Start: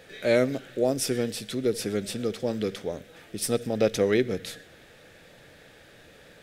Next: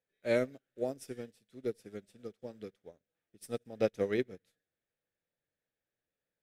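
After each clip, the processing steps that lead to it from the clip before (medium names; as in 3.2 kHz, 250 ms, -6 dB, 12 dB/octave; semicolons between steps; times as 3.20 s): peaking EQ 4.3 kHz -3.5 dB 1.1 oct; upward expansion 2.5:1, over -42 dBFS; trim -5 dB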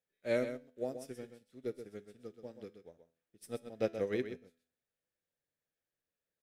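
feedback comb 83 Hz, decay 0.49 s, harmonics all, mix 40%; on a send: delay 128 ms -9.5 dB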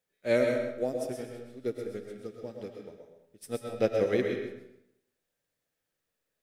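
reverberation RT60 0.80 s, pre-delay 75 ms, DRR 3 dB; trim +6.5 dB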